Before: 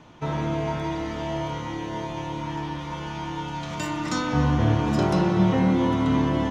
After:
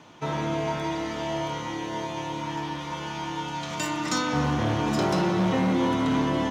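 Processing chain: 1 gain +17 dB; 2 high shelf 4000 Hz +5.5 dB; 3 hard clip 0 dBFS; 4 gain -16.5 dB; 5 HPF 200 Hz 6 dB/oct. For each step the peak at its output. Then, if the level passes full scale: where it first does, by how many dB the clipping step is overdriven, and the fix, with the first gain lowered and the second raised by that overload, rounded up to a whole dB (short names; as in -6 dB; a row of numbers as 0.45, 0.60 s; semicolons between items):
+8.0, +8.0, 0.0, -16.5, -13.5 dBFS; step 1, 8.0 dB; step 1 +9 dB, step 4 -8.5 dB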